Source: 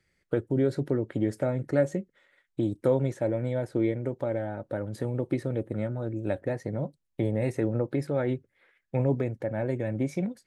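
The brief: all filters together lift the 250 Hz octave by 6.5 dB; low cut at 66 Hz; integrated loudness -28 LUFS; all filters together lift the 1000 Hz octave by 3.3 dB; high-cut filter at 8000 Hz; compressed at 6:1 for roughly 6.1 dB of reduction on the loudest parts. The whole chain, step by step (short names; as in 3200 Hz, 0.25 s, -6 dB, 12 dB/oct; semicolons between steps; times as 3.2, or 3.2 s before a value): HPF 66 Hz; LPF 8000 Hz; bell 250 Hz +8 dB; bell 1000 Hz +4 dB; compressor 6:1, threshold -22 dBFS; gain +1 dB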